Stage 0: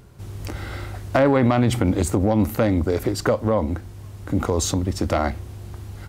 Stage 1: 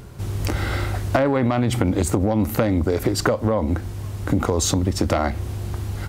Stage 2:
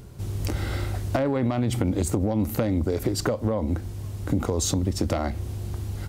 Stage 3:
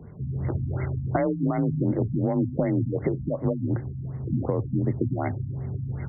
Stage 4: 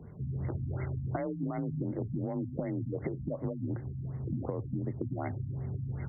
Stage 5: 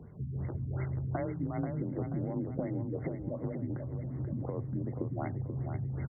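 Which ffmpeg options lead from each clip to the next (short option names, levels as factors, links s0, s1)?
-af "acompressor=threshold=0.0631:ratio=6,volume=2.51"
-af "equalizer=f=1400:t=o:w=2.2:g=-5.5,volume=0.668"
-af "aexciter=amount=6:drive=4.2:freq=2300,afreqshift=32,afftfilt=real='re*lt(b*sr/1024,270*pow(2200/270,0.5+0.5*sin(2*PI*2.7*pts/sr)))':imag='im*lt(b*sr/1024,270*pow(2200/270,0.5+0.5*sin(2*PI*2.7*pts/sr)))':win_size=1024:overlap=0.75"
-af "acompressor=threshold=0.0501:ratio=6,volume=0.596"
-af "tremolo=f=5:d=0.34,aecho=1:1:484|968|1452|1936|2420:0.447|0.197|0.0865|0.0381|0.0167"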